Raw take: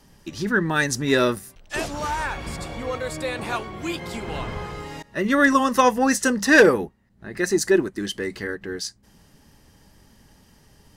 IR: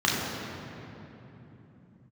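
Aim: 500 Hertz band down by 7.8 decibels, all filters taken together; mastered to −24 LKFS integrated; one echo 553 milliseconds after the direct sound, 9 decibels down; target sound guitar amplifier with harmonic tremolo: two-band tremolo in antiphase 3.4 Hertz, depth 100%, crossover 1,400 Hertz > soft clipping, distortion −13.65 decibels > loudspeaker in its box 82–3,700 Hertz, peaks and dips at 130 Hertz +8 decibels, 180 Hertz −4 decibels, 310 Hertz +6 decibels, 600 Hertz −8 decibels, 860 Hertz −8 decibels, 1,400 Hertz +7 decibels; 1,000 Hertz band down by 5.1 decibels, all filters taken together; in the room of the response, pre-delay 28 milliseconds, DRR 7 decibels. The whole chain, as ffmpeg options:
-filter_complex "[0:a]equalizer=frequency=500:width_type=o:gain=-9,equalizer=frequency=1000:width_type=o:gain=-4.5,aecho=1:1:553:0.355,asplit=2[link_01][link_02];[1:a]atrim=start_sample=2205,adelay=28[link_03];[link_02][link_03]afir=irnorm=-1:irlink=0,volume=-23dB[link_04];[link_01][link_04]amix=inputs=2:normalize=0,acrossover=split=1400[link_05][link_06];[link_05]aeval=exprs='val(0)*(1-1/2+1/2*cos(2*PI*3.4*n/s))':channel_layout=same[link_07];[link_06]aeval=exprs='val(0)*(1-1/2-1/2*cos(2*PI*3.4*n/s))':channel_layout=same[link_08];[link_07][link_08]amix=inputs=2:normalize=0,asoftclip=threshold=-20dB,highpass=82,equalizer=frequency=130:width_type=q:width=4:gain=8,equalizer=frequency=180:width_type=q:width=4:gain=-4,equalizer=frequency=310:width_type=q:width=4:gain=6,equalizer=frequency=600:width_type=q:width=4:gain=-8,equalizer=frequency=860:width_type=q:width=4:gain=-8,equalizer=frequency=1400:width_type=q:width=4:gain=7,lowpass=frequency=3700:width=0.5412,lowpass=frequency=3700:width=1.3066,volume=5.5dB"

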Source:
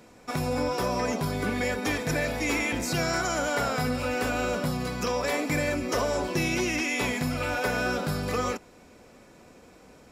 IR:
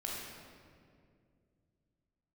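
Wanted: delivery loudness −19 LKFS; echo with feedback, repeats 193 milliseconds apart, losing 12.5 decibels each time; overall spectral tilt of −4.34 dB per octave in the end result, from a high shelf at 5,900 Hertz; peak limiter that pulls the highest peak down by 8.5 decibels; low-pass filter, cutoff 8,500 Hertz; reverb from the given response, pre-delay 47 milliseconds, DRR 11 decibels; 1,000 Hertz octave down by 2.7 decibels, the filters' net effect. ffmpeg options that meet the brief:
-filter_complex "[0:a]lowpass=8500,equalizer=frequency=1000:width_type=o:gain=-4,highshelf=frequency=5900:gain=4,alimiter=limit=-23.5dB:level=0:latency=1,aecho=1:1:193|386|579:0.237|0.0569|0.0137,asplit=2[link_01][link_02];[1:a]atrim=start_sample=2205,adelay=47[link_03];[link_02][link_03]afir=irnorm=-1:irlink=0,volume=-13dB[link_04];[link_01][link_04]amix=inputs=2:normalize=0,volume=12.5dB"

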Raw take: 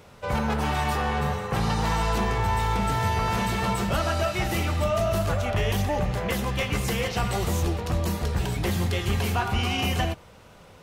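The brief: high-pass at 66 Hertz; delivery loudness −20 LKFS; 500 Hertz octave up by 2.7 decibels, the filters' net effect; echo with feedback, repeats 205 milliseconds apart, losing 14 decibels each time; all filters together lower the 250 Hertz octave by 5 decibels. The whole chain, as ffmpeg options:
ffmpeg -i in.wav -af "highpass=66,equalizer=frequency=250:width_type=o:gain=-9,equalizer=frequency=500:width_type=o:gain=5.5,aecho=1:1:205|410:0.2|0.0399,volume=6dB" out.wav

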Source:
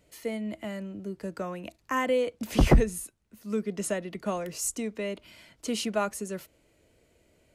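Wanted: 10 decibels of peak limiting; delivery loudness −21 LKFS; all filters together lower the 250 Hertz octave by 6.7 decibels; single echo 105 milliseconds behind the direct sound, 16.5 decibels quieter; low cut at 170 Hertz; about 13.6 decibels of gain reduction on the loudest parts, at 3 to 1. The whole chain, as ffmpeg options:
ffmpeg -i in.wav -af "highpass=170,equalizer=frequency=250:width_type=o:gain=-7,acompressor=threshold=-39dB:ratio=3,alimiter=level_in=9dB:limit=-24dB:level=0:latency=1,volume=-9dB,aecho=1:1:105:0.15,volume=22.5dB" out.wav

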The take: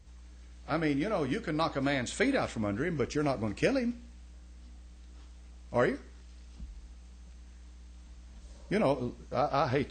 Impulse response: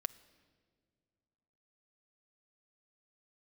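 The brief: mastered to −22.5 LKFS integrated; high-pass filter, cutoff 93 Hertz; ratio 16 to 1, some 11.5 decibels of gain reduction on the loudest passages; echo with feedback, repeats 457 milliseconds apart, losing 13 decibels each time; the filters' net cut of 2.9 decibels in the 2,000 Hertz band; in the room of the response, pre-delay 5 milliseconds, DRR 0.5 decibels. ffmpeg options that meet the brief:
-filter_complex "[0:a]highpass=93,equalizer=frequency=2000:width_type=o:gain=-3.5,acompressor=threshold=-34dB:ratio=16,aecho=1:1:457|914|1371:0.224|0.0493|0.0108,asplit=2[link_01][link_02];[1:a]atrim=start_sample=2205,adelay=5[link_03];[link_02][link_03]afir=irnorm=-1:irlink=0,volume=0.5dB[link_04];[link_01][link_04]amix=inputs=2:normalize=0,volume=15dB"

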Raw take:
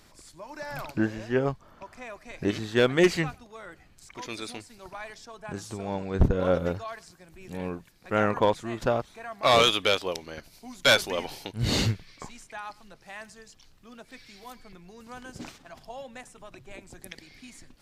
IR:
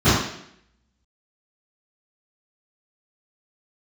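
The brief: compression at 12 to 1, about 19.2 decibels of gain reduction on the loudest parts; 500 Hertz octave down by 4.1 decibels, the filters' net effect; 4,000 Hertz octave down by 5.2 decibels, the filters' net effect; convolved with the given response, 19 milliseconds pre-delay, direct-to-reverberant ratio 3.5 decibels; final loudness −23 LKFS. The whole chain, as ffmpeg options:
-filter_complex "[0:a]equalizer=frequency=500:width_type=o:gain=-5,equalizer=frequency=4000:width_type=o:gain=-6.5,acompressor=threshold=-35dB:ratio=12,asplit=2[link_01][link_02];[1:a]atrim=start_sample=2205,adelay=19[link_03];[link_02][link_03]afir=irnorm=-1:irlink=0,volume=-27dB[link_04];[link_01][link_04]amix=inputs=2:normalize=0,volume=15.5dB"

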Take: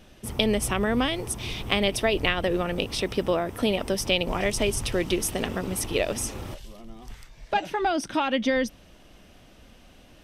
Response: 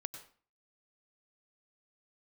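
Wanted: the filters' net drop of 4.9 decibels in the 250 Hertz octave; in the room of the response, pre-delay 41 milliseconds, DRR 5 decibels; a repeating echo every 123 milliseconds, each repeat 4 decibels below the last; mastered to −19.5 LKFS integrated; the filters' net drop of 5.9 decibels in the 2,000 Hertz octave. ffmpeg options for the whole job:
-filter_complex "[0:a]equalizer=frequency=250:width_type=o:gain=-6.5,equalizer=frequency=2000:width_type=o:gain=-7.5,aecho=1:1:123|246|369|492|615|738|861|984|1107:0.631|0.398|0.25|0.158|0.0994|0.0626|0.0394|0.0249|0.0157,asplit=2[link_01][link_02];[1:a]atrim=start_sample=2205,adelay=41[link_03];[link_02][link_03]afir=irnorm=-1:irlink=0,volume=-3dB[link_04];[link_01][link_04]amix=inputs=2:normalize=0,volume=6dB"

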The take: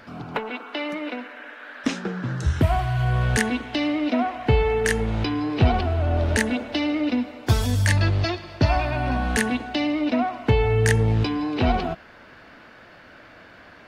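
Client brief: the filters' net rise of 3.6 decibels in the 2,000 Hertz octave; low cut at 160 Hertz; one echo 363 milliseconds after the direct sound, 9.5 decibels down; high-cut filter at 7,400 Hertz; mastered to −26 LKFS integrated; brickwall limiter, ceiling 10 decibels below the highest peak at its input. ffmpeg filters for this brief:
ffmpeg -i in.wav -af "highpass=160,lowpass=7400,equalizer=frequency=2000:width_type=o:gain=4.5,alimiter=limit=-14dB:level=0:latency=1,aecho=1:1:363:0.335,volume=-0.5dB" out.wav

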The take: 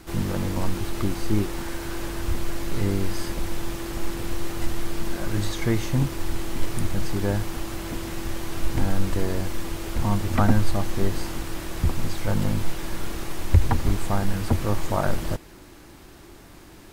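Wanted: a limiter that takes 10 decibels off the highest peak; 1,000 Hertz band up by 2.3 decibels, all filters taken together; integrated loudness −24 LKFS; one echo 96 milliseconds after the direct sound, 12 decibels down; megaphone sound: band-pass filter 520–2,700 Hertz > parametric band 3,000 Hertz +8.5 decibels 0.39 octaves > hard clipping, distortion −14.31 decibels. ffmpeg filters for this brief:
ffmpeg -i in.wav -af "equalizer=frequency=1000:width_type=o:gain=3.5,alimiter=limit=-14dB:level=0:latency=1,highpass=520,lowpass=2700,equalizer=frequency=3000:width_type=o:width=0.39:gain=8.5,aecho=1:1:96:0.251,asoftclip=type=hard:threshold=-25.5dB,volume=11.5dB" out.wav

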